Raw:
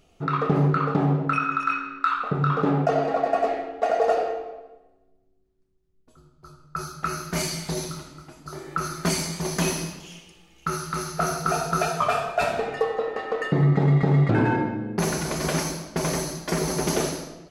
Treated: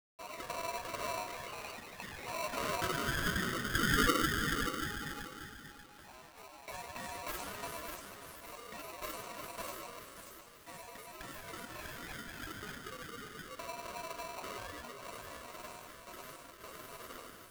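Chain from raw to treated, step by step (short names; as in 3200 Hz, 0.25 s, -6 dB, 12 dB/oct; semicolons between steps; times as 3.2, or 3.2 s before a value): Doppler pass-by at 5.06, 7 m/s, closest 2.7 m; reverb RT60 1.8 s, pre-delay 39 ms, DRR 1.5 dB; in parallel at -1.5 dB: compressor, threshold -49 dBFS, peak gain reduction 22.5 dB; on the sum: band shelf 3300 Hz -11.5 dB 2.8 oct; grains, spray 13 ms, pitch spread up and down by 7 st; high shelf 9200 Hz +11 dB; on a send: thinning echo 0.585 s, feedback 39%, high-pass 560 Hz, level -4 dB; on the sum: requantised 10-bit, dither none; polarity switched at an audio rate 830 Hz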